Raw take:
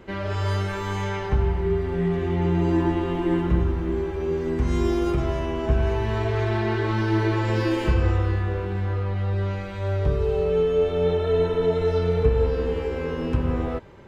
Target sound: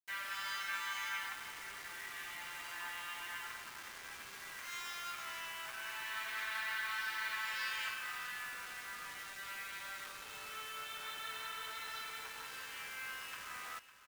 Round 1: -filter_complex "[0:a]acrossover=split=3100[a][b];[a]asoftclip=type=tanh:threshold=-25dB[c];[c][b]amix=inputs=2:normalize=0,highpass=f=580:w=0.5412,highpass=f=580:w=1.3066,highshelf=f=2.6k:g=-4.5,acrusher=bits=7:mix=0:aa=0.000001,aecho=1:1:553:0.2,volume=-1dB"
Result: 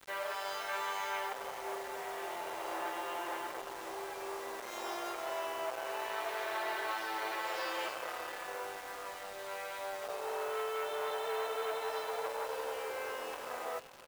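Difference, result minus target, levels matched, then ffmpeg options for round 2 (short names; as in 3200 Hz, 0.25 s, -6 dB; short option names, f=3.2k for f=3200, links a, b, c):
500 Hz band +19.0 dB; soft clip: distortion +10 dB
-filter_complex "[0:a]acrossover=split=3100[a][b];[a]asoftclip=type=tanh:threshold=-15dB[c];[c][b]amix=inputs=2:normalize=0,highpass=f=1.4k:w=0.5412,highpass=f=1.4k:w=1.3066,highshelf=f=2.6k:g=-4.5,acrusher=bits=7:mix=0:aa=0.000001,aecho=1:1:553:0.2,volume=-1dB"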